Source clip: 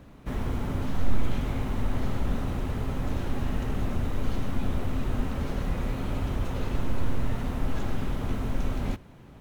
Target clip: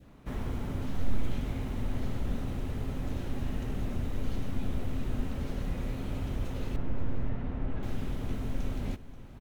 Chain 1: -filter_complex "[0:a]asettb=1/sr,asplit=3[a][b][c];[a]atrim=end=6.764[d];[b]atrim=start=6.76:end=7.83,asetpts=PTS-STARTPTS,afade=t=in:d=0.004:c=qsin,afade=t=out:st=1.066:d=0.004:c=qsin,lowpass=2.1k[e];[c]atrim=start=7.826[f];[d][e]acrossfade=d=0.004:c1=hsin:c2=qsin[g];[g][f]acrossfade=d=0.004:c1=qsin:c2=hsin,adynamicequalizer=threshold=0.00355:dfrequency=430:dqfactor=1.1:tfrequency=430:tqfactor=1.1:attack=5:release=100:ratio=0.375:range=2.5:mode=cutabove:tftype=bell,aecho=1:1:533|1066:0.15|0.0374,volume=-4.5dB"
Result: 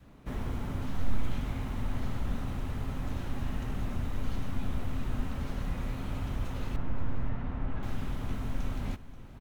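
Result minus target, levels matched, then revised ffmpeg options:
1000 Hz band +3.0 dB
-filter_complex "[0:a]asettb=1/sr,asplit=3[a][b][c];[a]atrim=end=6.764[d];[b]atrim=start=6.76:end=7.83,asetpts=PTS-STARTPTS,afade=t=in:d=0.004:c=qsin,afade=t=out:st=1.066:d=0.004:c=qsin,lowpass=2.1k[e];[c]atrim=start=7.826[f];[d][e]acrossfade=d=0.004:c1=hsin:c2=qsin[g];[g][f]acrossfade=d=0.004:c1=qsin:c2=hsin,adynamicequalizer=threshold=0.00355:dfrequency=1100:dqfactor=1.1:tfrequency=1100:tqfactor=1.1:attack=5:release=100:ratio=0.375:range=2.5:mode=cutabove:tftype=bell,aecho=1:1:533|1066:0.15|0.0374,volume=-4.5dB"

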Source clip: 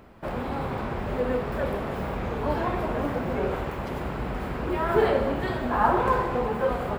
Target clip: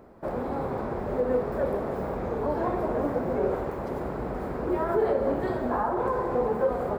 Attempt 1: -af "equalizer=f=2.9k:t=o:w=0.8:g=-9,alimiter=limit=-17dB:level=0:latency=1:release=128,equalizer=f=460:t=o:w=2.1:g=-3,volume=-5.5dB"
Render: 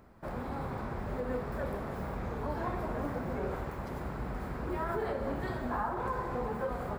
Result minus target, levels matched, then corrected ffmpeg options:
500 Hz band -3.0 dB
-af "equalizer=f=2.9k:t=o:w=0.8:g=-9,alimiter=limit=-17dB:level=0:latency=1:release=128,equalizer=f=460:t=o:w=2.1:g=8.5,volume=-5.5dB"

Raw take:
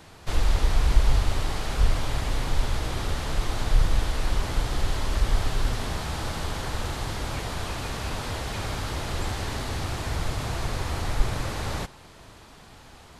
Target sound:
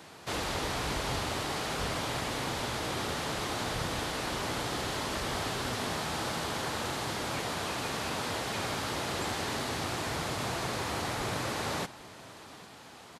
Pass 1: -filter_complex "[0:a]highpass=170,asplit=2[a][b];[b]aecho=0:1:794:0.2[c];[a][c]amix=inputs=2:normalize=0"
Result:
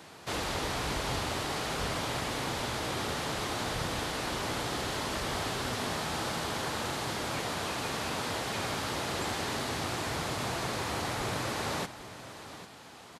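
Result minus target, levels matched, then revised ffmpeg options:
echo-to-direct +6.5 dB
-filter_complex "[0:a]highpass=170,asplit=2[a][b];[b]aecho=0:1:794:0.0944[c];[a][c]amix=inputs=2:normalize=0"

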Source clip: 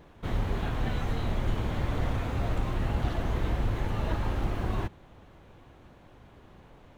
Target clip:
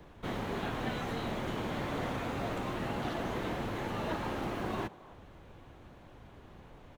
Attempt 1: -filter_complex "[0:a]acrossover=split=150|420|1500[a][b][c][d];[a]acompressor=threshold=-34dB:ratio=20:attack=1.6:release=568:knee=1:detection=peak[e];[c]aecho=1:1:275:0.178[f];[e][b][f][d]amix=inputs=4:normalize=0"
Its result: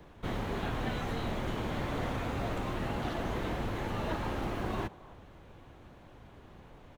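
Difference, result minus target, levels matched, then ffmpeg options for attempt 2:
compressor: peak gain reduction -8.5 dB
-filter_complex "[0:a]acrossover=split=150|420|1500[a][b][c][d];[a]acompressor=threshold=-43dB:ratio=20:attack=1.6:release=568:knee=1:detection=peak[e];[c]aecho=1:1:275:0.178[f];[e][b][f][d]amix=inputs=4:normalize=0"

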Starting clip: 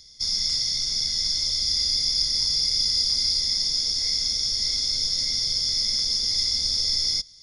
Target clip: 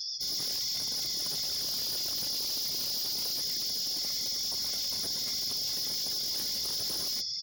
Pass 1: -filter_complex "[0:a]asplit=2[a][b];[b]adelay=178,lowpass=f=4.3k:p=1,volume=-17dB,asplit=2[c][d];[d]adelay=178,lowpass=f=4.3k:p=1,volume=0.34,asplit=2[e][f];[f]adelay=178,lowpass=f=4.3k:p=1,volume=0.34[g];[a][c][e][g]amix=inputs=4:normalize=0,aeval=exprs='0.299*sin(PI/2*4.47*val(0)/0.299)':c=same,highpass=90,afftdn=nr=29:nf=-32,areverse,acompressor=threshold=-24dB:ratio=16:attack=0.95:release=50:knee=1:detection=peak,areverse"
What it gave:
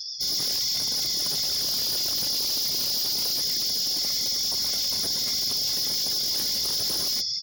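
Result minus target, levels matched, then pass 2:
compressor: peak gain reduction -6.5 dB
-filter_complex "[0:a]asplit=2[a][b];[b]adelay=178,lowpass=f=4.3k:p=1,volume=-17dB,asplit=2[c][d];[d]adelay=178,lowpass=f=4.3k:p=1,volume=0.34,asplit=2[e][f];[f]adelay=178,lowpass=f=4.3k:p=1,volume=0.34[g];[a][c][e][g]amix=inputs=4:normalize=0,aeval=exprs='0.299*sin(PI/2*4.47*val(0)/0.299)':c=same,highpass=90,afftdn=nr=29:nf=-32,areverse,acompressor=threshold=-31dB:ratio=16:attack=0.95:release=50:knee=1:detection=peak,areverse"

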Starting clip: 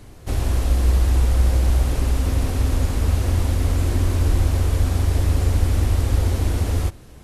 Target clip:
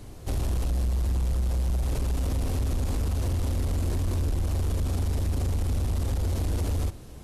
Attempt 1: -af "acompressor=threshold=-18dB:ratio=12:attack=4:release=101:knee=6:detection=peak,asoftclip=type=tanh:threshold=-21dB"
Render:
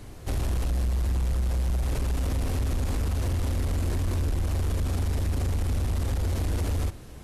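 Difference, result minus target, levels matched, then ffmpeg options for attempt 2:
2000 Hz band +3.5 dB
-af "acompressor=threshold=-18dB:ratio=12:attack=4:release=101:knee=6:detection=peak,equalizer=f=1.8k:t=o:w=1.3:g=-4.5,asoftclip=type=tanh:threshold=-21dB"

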